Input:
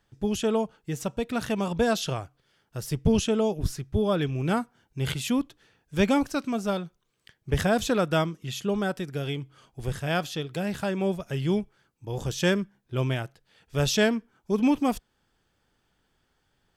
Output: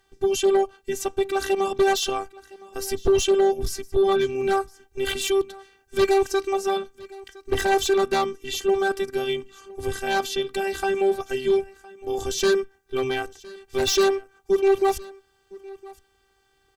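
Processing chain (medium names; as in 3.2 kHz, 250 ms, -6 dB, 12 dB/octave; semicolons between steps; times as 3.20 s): robot voice 389 Hz; Chebyshev shaper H 5 -6 dB, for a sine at -9.5 dBFS; delay 1012 ms -21.5 dB; trim -1.5 dB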